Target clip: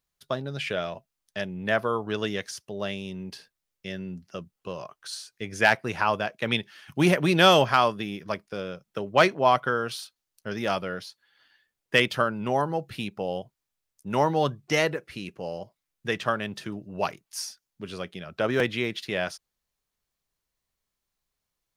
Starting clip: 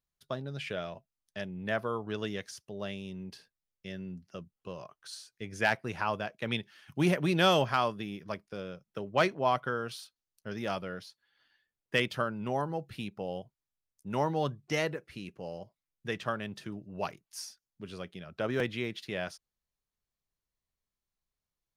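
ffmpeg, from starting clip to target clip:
ffmpeg -i in.wav -af "lowshelf=frequency=270:gain=-4.5,volume=8dB" out.wav

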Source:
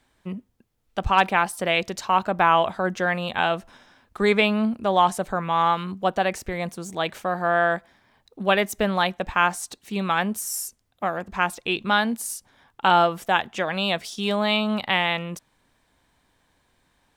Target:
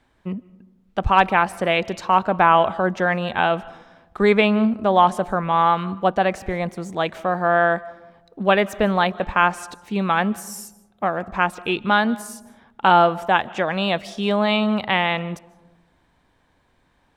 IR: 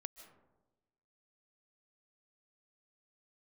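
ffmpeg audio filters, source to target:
-filter_complex "[0:a]lowpass=frequency=2100:poles=1,asplit=2[link_01][link_02];[1:a]atrim=start_sample=2205,highshelf=frequency=8000:gain=9[link_03];[link_02][link_03]afir=irnorm=-1:irlink=0,volume=-3.5dB[link_04];[link_01][link_04]amix=inputs=2:normalize=0,volume=1.5dB"

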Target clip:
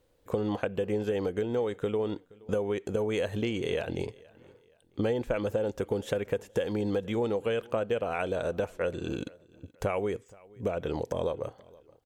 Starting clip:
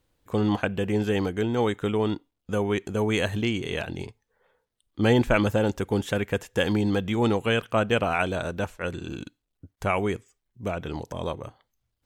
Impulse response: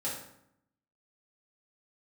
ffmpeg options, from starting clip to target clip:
-af "equalizer=frequency=500:width=2:gain=11,acompressor=threshold=-27dB:ratio=6,aecho=1:1:473|946:0.0631|0.0221"

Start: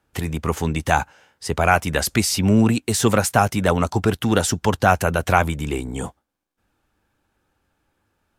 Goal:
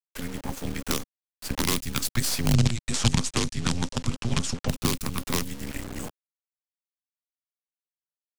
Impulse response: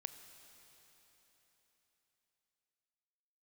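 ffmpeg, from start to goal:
-filter_complex "[0:a]afreqshift=-350,lowshelf=frequency=140:gain=-4.5,bandreject=frequency=680:width=12,acrusher=bits=3:dc=4:mix=0:aa=0.000001,dynaudnorm=framelen=730:gausssize=3:maxgain=11.5dB,asplit=3[link_01][link_02][link_03];[link_01]afade=type=out:start_time=2.53:duration=0.02[link_04];[link_02]lowpass=frequency=8300:width=0.5412,lowpass=frequency=8300:width=1.3066,afade=type=in:start_time=2.53:duration=0.02,afade=type=out:start_time=4.67:duration=0.02[link_05];[link_03]afade=type=in:start_time=4.67:duration=0.02[link_06];[link_04][link_05][link_06]amix=inputs=3:normalize=0,acrossover=split=210|3000[link_07][link_08][link_09];[link_08]acompressor=threshold=-28dB:ratio=6[link_10];[link_07][link_10][link_09]amix=inputs=3:normalize=0,volume=-4dB"

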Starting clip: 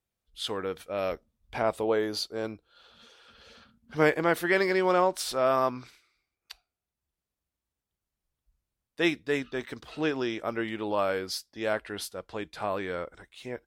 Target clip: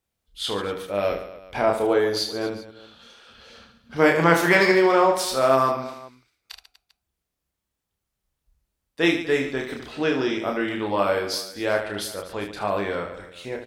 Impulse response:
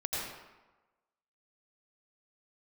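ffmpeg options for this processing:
-filter_complex "[0:a]asettb=1/sr,asplit=3[link_01][link_02][link_03];[link_01]atrim=end=4.154[link_04];[link_02]atrim=start=4.15:end=4.72,asetpts=PTS-STARTPTS,afade=type=in:duration=0.004:curve=qsin,afade=type=out:start_time=0.566:duration=0.004:curve=qsin,equalizer=frequency=160:width_type=o:width=0.67:gain=7,equalizer=frequency=1000:width_type=o:width=0.67:gain=7,equalizer=frequency=2500:width_type=o:width=0.67:gain=4,equalizer=frequency=6300:width_type=o:width=0.67:gain=9[link_05];[link_03]atrim=start=4.716[link_06];[link_04][link_05]acrossfade=duration=0.004:curve1=hsin:curve2=qsin[link_07];[link_07][link_06]acrossfade=duration=0.004:curve1=qsin:curve2=hsin,asplit=2[link_08][link_09];[link_09]aecho=0:1:30|75|142.5|243.8|395.6:0.631|0.398|0.251|0.158|0.1[link_10];[link_08][link_10]amix=inputs=2:normalize=0,volume=4dB"

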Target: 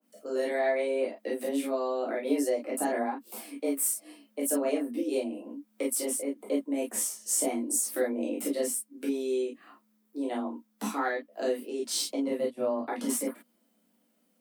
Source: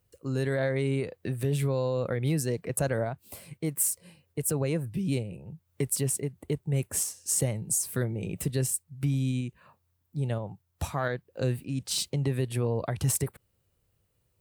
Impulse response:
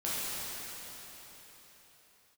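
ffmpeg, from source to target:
-filter_complex "[0:a]highpass=94,asplit=3[link_01][link_02][link_03];[link_01]afade=type=out:start_time=12.21:duration=0.02[link_04];[link_02]agate=range=-21dB:threshold=-28dB:ratio=16:detection=peak,afade=type=in:start_time=12.21:duration=0.02,afade=type=out:start_time=12.85:duration=0.02[link_05];[link_03]afade=type=in:start_time=12.85:duration=0.02[link_06];[link_04][link_05][link_06]amix=inputs=3:normalize=0,asplit=2[link_07][link_08];[link_08]acompressor=threshold=-37dB:ratio=6,volume=-3dB[link_09];[link_07][link_09]amix=inputs=2:normalize=0,afreqshift=130[link_10];[1:a]atrim=start_sample=2205,atrim=end_sample=3969,asetrate=66150,aresample=44100[link_11];[link_10][link_11]afir=irnorm=-1:irlink=0,adynamicequalizer=threshold=0.00794:dfrequency=1700:dqfactor=0.7:tfrequency=1700:tqfactor=0.7:attack=5:release=100:ratio=0.375:range=2:mode=cutabove:tftype=highshelf"

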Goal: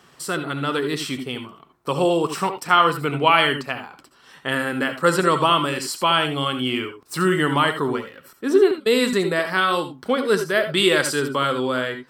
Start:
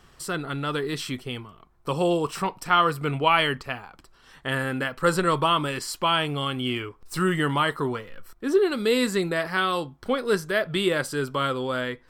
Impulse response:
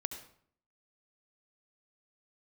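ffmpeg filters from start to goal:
-filter_complex "[0:a]highpass=160,asettb=1/sr,asplit=3[link_01][link_02][link_03];[link_01]atrim=end=8.714[link_04];[link_02]atrim=start=8.71:end=9.13,asetpts=PTS-STARTPTS,afade=type=in:duration=0.004:curve=qsin,afade=type=out:start_time=0.416:duration=0.004:curve=qsin,agate=range=-25dB:threshold=-24dB:ratio=16:detection=peak[link_05];[link_03]atrim=start=9.126[link_06];[link_04][link_05]acrossfade=duration=0.004:curve1=hsin:curve2=qsin[link_07];[link_07][link_06]acrossfade=duration=0.004:curve1=qsin:curve2=hsin,asettb=1/sr,asplit=3[link_08][link_09][link_10];[link_08]atrim=end=10.774[link_11];[link_09]atrim=start=10.77:end=11.2,asetpts=PTS-STARTPTS,afade=type=in:duration=0.004:curve=qsin,afade=type=out:start_time=0.426:duration=0.004:curve=qsin,equalizer=frequency=5400:width=0.33:gain=6.5[link_12];[link_10]atrim=start=11.196[link_13];[link_11][link_12]acrossfade=duration=0.004:curve1=hsin:curve2=qsin[link_14];[link_14][link_13]acrossfade=duration=0.004:curve1=qsin:curve2=hsin[link_15];[1:a]atrim=start_sample=2205,atrim=end_sample=3969[link_16];[link_15][link_16]afir=irnorm=-1:irlink=0,volume=5dB"

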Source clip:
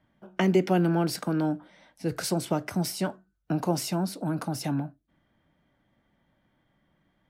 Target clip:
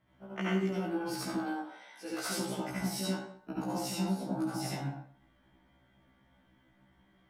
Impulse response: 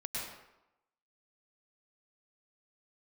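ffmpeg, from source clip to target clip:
-filter_complex "[0:a]asplit=3[link_01][link_02][link_03];[link_01]afade=type=out:start_time=1.31:duration=0.02[link_04];[link_02]highpass=550,afade=type=in:start_time=1.31:duration=0.02,afade=type=out:start_time=2.28:duration=0.02[link_05];[link_03]afade=type=in:start_time=2.28:duration=0.02[link_06];[link_04][link_05][link_06]amix=inputs=3:normalize=0,asettb=1/sr,asplit=3[link_07][link_08][link_09];[link_07]atrim=end=4.014[link_10];[link_08]atrim=start=4.01:end=4.42,asetpts=PTS-STARTPTS,afade=type=in:duration=0.004:curve=qsin,afade=type=out:start_time=0.406:duration=0.004:curve=qsin,tiltshelf=frequency=970:gain=4[link_11];[link_09]atrim=start=4.416[link_12];[link_10][link_11]acrossfade=duration=0.004:curve1=hsin:curve2=qsin[link_13];[link_13][link_12]acrossfade=duration=0.004:curve1=qsin:curve2=hsin,acompressor=threshold=-34dB:ratio=6[link_14];[1:a]atrim=start_sample=2205,asetrate=66150,aresample=44100[link_15];[link_14][link_15]afir=irnorm=-1:irlink=0,afftfilt=real='re*1.73*eq(mod(b,3),0)':imag='im*1.73*eq(mod(b,3),0)':win_size=2048:overlap=0.75,volume=7dB"

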